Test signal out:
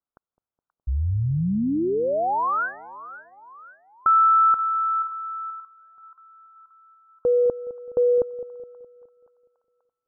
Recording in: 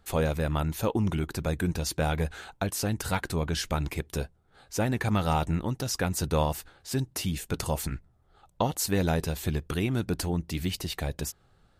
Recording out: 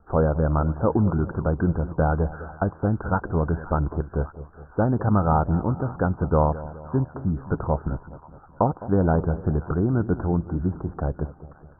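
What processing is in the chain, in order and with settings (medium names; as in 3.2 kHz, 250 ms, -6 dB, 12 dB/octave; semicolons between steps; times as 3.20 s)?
steep low-pass 1.5 kHz 96 dB/octave; on a send: two-band feedback delay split 910 Hz, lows 209 ms, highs 529 ms, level -15.5 dB; on the sum: trim +6 dB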